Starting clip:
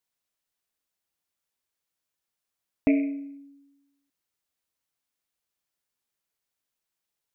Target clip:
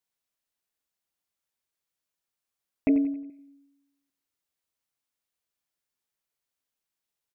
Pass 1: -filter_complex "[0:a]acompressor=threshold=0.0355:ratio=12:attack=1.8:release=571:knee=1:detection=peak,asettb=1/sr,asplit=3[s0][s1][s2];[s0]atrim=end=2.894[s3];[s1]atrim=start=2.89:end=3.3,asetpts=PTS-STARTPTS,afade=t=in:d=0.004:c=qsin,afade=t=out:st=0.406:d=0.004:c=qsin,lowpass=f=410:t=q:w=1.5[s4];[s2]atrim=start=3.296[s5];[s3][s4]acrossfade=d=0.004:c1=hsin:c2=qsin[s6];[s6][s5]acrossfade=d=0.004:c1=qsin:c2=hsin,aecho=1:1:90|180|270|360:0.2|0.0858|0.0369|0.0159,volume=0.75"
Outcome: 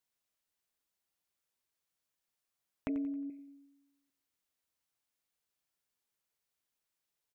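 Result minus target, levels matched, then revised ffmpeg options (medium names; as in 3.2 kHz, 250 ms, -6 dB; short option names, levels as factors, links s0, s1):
compression: peak gain reduction +14.5 dB
-filter_complex "[0:a]asettb=1/sr,asplit=3[s0][s1][s2];[s0]atrim=end=2.894[s3];[s1]atrim=start=2.89:end=3.3,asetpts=PTS-STARTPTS,afade=t=in:d=0.004:c=qsin,afade=t=out:st=0.406:d=0.004:c=qsin,lowpass=f=410:t=q:w=1.5[s4];[s2]atrim=start=3.296[s5];[s3][s4]acrossfade=d=0.004:c1=hsin:c2=qsin[s6];[s6][s5]acrossfade=d=0.004:c1=qsin:c2=hsin,aecho=1:1:90|180|270|360:0.2|0.0858|0.0369|0.0159,volume=0.75"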